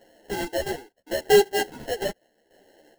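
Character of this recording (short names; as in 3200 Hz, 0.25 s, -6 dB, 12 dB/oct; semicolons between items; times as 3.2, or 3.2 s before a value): chopped level 0.8 Hz, depth 65%, duty 35%; aliases and images of a low sample rate 1200 Hz, jitter 0%; a shimmering, thickened sound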